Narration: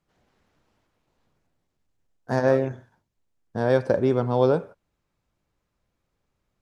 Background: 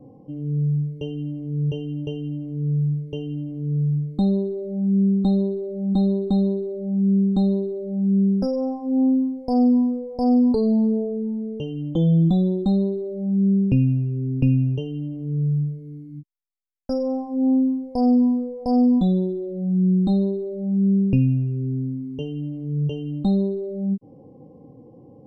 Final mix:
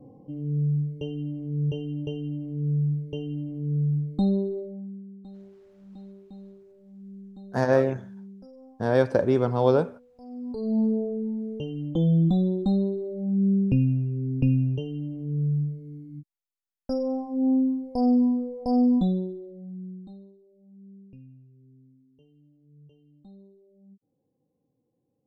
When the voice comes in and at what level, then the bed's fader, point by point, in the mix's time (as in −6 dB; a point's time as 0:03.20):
5.25 s, −0.5 dB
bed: 0:04.58 −3 dB
0:05.04 −25 dB
0:10.28 −25 dB
0:10.79 −3.5 dB
0:19.02 −3.5 dB
0:20.37 −30 dB